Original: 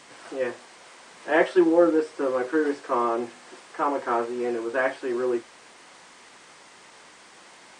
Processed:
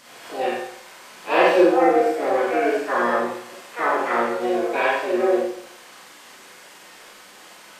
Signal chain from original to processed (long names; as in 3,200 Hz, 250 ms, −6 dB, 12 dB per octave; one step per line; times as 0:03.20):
pitch-shifted copies added +7 semitones −2 dB
flutter between parallel walls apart 8.6 metres, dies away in 0.25 s
four-comb reverb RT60 0.7 s, combs from 30 ms, DRR −3.5 dB
level −2.5 dB